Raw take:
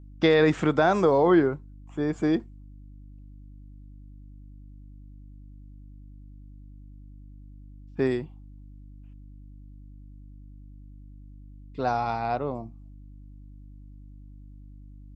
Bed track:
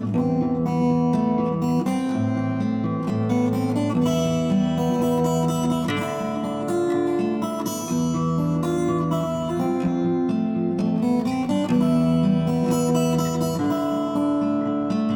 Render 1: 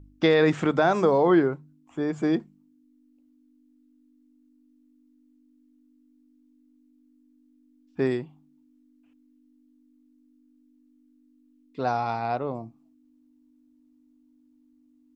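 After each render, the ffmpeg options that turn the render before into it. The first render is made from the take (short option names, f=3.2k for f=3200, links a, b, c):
-af "bandreject=f=50:t=h:w=4,bandreject=f=100:t=h:w=4,bandreject=f=150:t=h:w=4,bandreject=f=200:t=h:w=4"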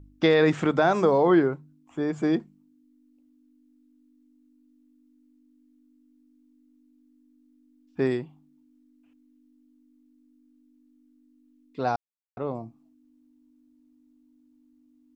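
-filter_complex "[0:a]asplit=3[a][b][c];[a]atrim=end=11.96,asetpts=PTS-STARTPTS,afade=t=out:st=11.956:d=0.004:c=hsin[d];[b]atrim=start=11.96:end=12.37,asetpts=PTS-STARTPTS,volume=0[e];[c]atrim=start=12.37,asetpts=PTS-STARTPTS,afade=t=in:d=0.004:c=hsin[f];[d][e][f]concat=n=3:v=0:a=1"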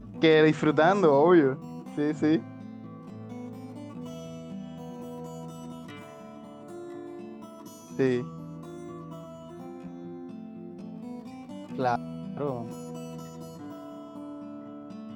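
-filter_complex "[1:a]volume=-19dB[a];[0:a][a]amix=inputs=2:normalize=0"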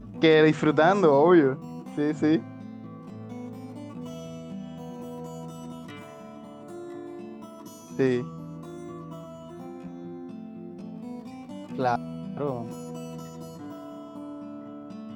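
-af "volume=1.5dB"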